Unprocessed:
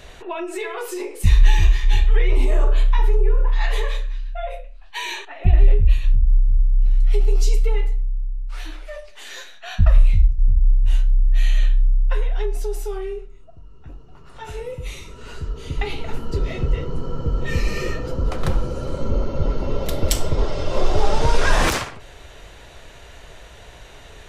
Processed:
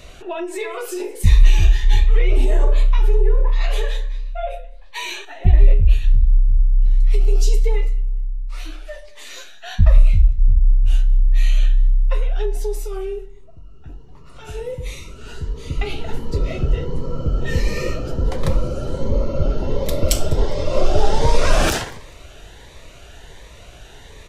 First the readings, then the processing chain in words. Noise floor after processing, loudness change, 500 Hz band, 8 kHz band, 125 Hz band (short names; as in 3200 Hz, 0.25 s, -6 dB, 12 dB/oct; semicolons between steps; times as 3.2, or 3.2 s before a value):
-41 dBFS, +1.5 dB, +2.5 dB, +2.0 dB, +2.0 dB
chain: dynamic EQ 580 Hz, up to +5 dB, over -42 dBFS, Q 3; on a send: feedback echo 0.201 s, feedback 29%, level -23 dB; on the sum: cascading phaser rising 1.4 Hz; gain +2 dB